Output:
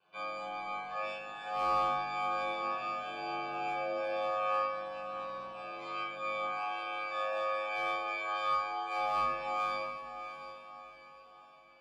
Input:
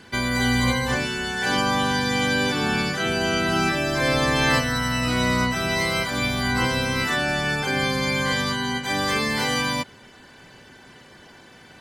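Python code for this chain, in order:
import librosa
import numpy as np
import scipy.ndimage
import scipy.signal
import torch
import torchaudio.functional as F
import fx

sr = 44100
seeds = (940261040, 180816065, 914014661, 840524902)

y = fx.spec_box(x, sr, start_s=5.79, length_s=0.24, low_hz=870.0, high_hz=8000.0, gain_db=8)
y = fx.highpass(y, sr, hz=510.0, slope=12, at=(6.45, 9.06))
y = fx.rider(y, sr, range_db=10, speed_s=0.5)
y = fx.vowel_filter(y, sr, vowel='a')
y = fx.resonator_bank(y, sr, root=55, chord='minor', decay_s=0.33)
y = y * np.sin(2.0 * np.pi * 52.0 * np.arange(len(y)) / sr)
y = np.clip(y, -10.0 ** (-37.0 / 20.0), 10.0 ** (-37.0 / 20.0))
y = fx.echo_diffused(y, sr, ms=719, feedback_pct=41, wet_db=-10.0)
y = fx.room_shoebox(y, sr, seeds[0], volume_m3=670.0, walls='furnished', distance_m=5.0)
y = F.gain(torch.from_numpy(y), 4.5).numpy()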